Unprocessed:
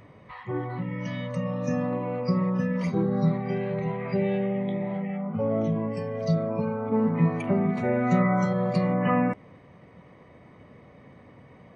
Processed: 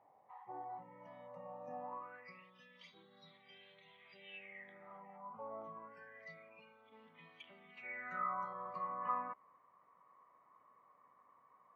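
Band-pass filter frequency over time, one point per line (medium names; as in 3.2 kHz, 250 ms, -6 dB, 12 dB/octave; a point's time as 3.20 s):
band-pass filter, Q 10
1.84 s 800 Hz
2.51 s 3.4 kHz
4.21 s 3.4 kHz
5.06 s 990 Hz
5.60 s 990 Hz
6.77 s 3.3 kHz
7.66 s 3.3 kHz
8.34 s 1.1 kHz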